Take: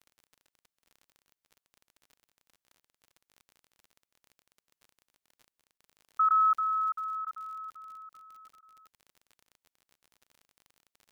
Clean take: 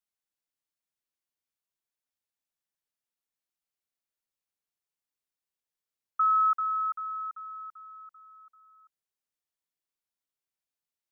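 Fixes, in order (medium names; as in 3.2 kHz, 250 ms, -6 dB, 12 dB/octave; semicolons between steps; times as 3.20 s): de-click; interpolate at 5.78/6.29/7.25/8.61/9.49 s, 15 ms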